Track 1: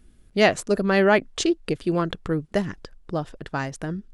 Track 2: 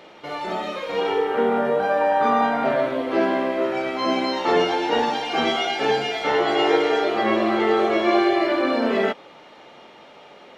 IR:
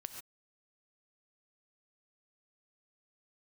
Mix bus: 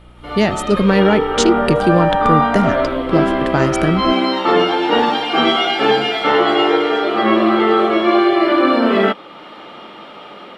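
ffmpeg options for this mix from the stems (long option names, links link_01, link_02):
-filter_complex "[0:a]acrossover=split=250[link_01][link_02];[link_02]acompressor=threshold=-27dB:ratio=4[link_03];[link_01][link_03]amix=inputs=2:normalize=0,aeval=exprs='val(0)+0.00562*(sin(2*PI*60*n/s)+sin(2*PI*2*60*n/s)/2+sin(2*PI*3*60*n/s)/3+sin(2*PI*4*60*n/s)/4+sin(2*PI*5*60*n/s)/5)':channel_layout=same,volume=1.5dB[link_04];[1:a]equalizer=frequency=200:width_type=o:width=0.33:gain=7,equalizer=frequency=315:width_type=o:width=0.33:gain=6,equalizer=frequency=1250:width_type=o:width=0.33:gain=9,equalizer=frequency=3150:width_type=o:width=0.33:gain=5,equalizer=frequency=6300:width_type=o:width=0.33:gain=-10,volume=-7.5dB[link_05];[link_04][link_05]amix=inputs=2:normalize=0,dynaudnorm=framelen=160:gausssize=3:maxgain=15dB"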